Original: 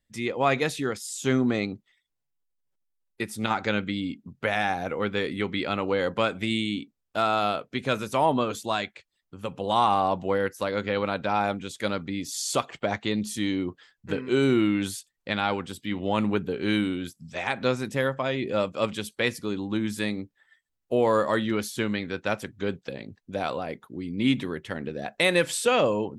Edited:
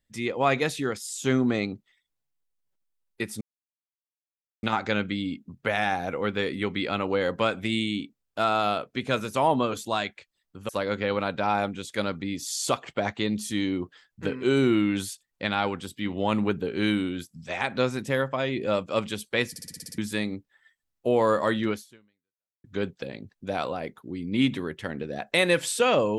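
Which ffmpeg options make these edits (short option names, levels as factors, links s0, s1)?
-filter_complex "[0:a]asplit=12[s0][s1][s2][s3][s4][s5][s6][s7][s8][s9][s10][s11];[s0]atrim=end=3.41,asetpts=PTS-STARTPTS,afade=t=out:st=3.406:d=0.004:c=hsin,apad=pad_dur=1.22[s12];[s1]atrim=start=3.41:end=9.472,asetpts=PTS-STARTPTS,afade=t=in:d=0.004:c=hsin[s13];[s2]atrim=start=10.548:end=19.422[s14];[s3]atrim=start=19.358:end=19.422[s15];[s4]atrim=start=19.358:end=19.422[s16];[s5]atrim=start=19.358:end=19.422[s17];[s6]atrim=start=19.358:end=19.422[s18];[s7]atrim=start=19.358:end=19.422[s19];[s8]atrim=start=19.358:end=19.422[s20];[s9]atrim=start=19.358:end=19.422[s21];[s10]atrim=start=19.838:end=22.5,asetpts=PTS-STARTPTS,afade=t=out:st=1.732:d=0.93:c=exp[s22];[s11]atrim=start=22.5,asetpts=PTS-STARTPTS,afade=t=in:d=0.004:c=hsin[s23];[s12][s13]concat=n=2:v=0:a=1[s24];[s24][s14]acrossfade=d=0.004:c1=hsin:c2=hsin[s25];[s25][s15]acrossfade=d=0.004:c1=hsin:c2=hsin[s26];[s26][s16]acrossfade=d=0.004:c1=hsin:c2=hsin[s27];[s27][s17]acrossfade=d=0.004:c1=hsin:c2=hsin[s28];[s28][s18]acrossfade=d=0.004:c1=hsin:c2=hsin[s29];[s29][s19]acrossfade=d=0.004:c1=hsin:c2=hsin[s30];[s30][s20]acrossfade=d=0.004:c1=hsin:c2=hsin[s31];[s31][s21]acrossfade=d=0.004:c1=hsin:c2=hsin[s32];[s22][s23]concat=n=2:v=0:a=1[s33];[s32][s33]acrossfade=d=0.004:c1=hsin:c2=hsin"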